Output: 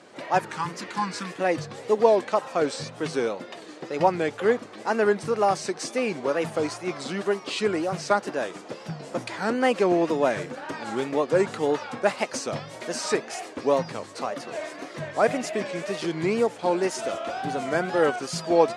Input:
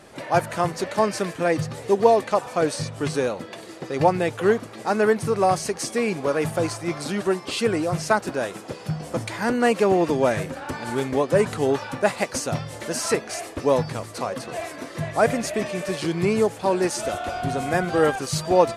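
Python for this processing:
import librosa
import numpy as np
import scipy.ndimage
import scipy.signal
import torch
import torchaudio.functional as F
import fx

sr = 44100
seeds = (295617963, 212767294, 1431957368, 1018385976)

y = fx.spec_repair(x, sr, seeds[0], start_s=0.42, length_s=0.91, low_hz=330.0, high_hz=850.0, source='after')
y = fx.wow_flutter(y, sr, seeds[1], rate_hz=2.1, depth_cents=130.0)
y = fx.bandpass_edges(y, sr, low_hz=200.0, high_hz=7300.0)
y = y * 10.0 ** (-2.0 / 20.0)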